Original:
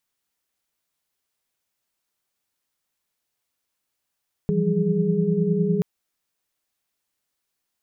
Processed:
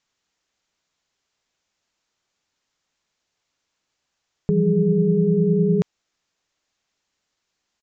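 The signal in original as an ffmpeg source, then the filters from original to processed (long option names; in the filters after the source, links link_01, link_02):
-f lavfi -i "aevalsrc='0.0631*(sin(2*PI*164.81*t)+sin(2*PI*174.61*t)+sin(2*PI*196*t)+sin(2*PI*415.3*t))':duration=1.33:sample_rate=44100"
-filter_complex "[0:a]asplit=2[link_01][link_02];[link_02]alimiter=limit=-22.5dB:level=0:latency=1:release=12,volume=0.5dB[link_03];[link_01][link_03]amix=inputs=2:normalize=0,aresample=16000,aresample=44100"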